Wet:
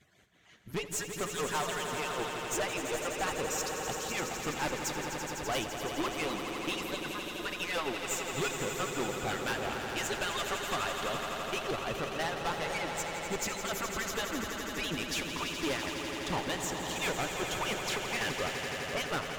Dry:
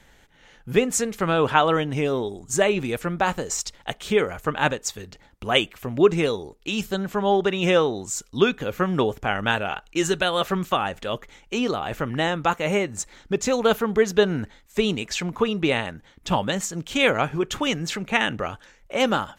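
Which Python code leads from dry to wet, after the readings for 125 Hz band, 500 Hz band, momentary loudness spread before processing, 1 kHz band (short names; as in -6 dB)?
-13.0 dB, -13.5 dB, 10 LU, -9.5 dB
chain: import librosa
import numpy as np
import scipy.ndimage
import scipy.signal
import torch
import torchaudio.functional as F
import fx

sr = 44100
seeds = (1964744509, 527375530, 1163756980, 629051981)

y = fx.hpss_only(x, sr, part='percussive')
y = y * (1.0 - 0.48 / 2.0 + 0.48 / 2.0 * np.cos(2.0 * np.pi * 5.8 * (np.arange(len(y)) / sr)))
y = fx.tube_stage(y, sr, drive_db=30.0, bias=0.65)
y = fx.echo_swell(y, sr, ms=84, loudest=5, wet_db=-9.0)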